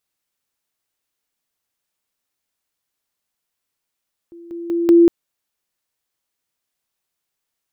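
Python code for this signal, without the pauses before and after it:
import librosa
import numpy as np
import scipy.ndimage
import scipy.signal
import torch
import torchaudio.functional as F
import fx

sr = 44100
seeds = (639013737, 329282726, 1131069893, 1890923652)

y = fx.level_ladder(sr, hz=340.0, from_db=-36.5, step_db=10.0, steps=4, dwell_s=0.19, gap_s=0.0)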